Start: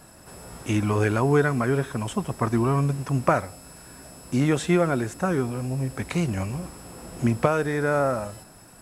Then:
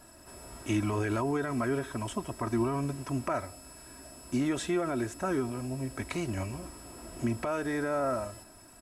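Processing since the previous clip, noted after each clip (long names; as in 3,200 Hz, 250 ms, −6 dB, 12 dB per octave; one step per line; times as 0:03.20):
brickwall limiter −15.5 dBFS, peak gain reduction 11.5 dB
comb filter 3.1 ms, depth 56%
level −6 dB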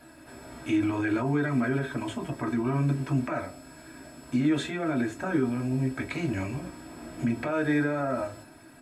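brickwall limiter −24.5 dBFS, peak gain reduction 6 dB
convolution reverb RT60 0.20 s, pre-delay 3 ms, DRR 4 dB
level −5.5 dB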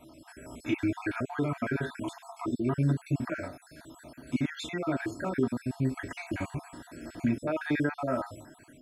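time-frequency cells dropped at random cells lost 48%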